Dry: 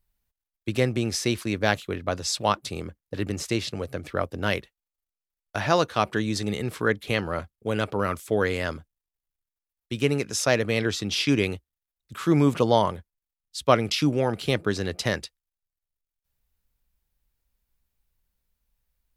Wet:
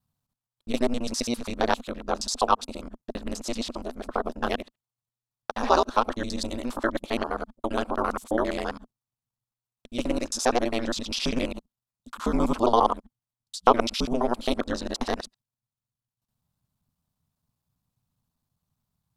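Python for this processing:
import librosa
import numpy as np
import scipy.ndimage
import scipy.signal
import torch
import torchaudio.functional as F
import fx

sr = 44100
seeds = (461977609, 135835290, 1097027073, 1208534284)

y = fx.local_reverse(x, sr, ms=67.0)
y = fx.graphic_eq(y, sr, hz=(125, 250, 500, 1000, 2000, 4000, 8000), db=(12, -9, 6, 12, -5, 5, 5))
y = y * np.sin(2.0 * np.pi * 120.0 * np.arange(len(y)) / sr)
y = y * 10.0 ** (-4.0 / 20.0)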